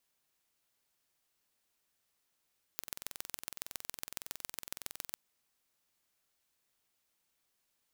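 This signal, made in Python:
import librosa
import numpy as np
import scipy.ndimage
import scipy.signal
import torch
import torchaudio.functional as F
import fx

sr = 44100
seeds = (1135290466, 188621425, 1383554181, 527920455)

y = fx.impulse_train(sr, length_s=2.37, per_s=21.7, accent_every=3, level_db=-10.0)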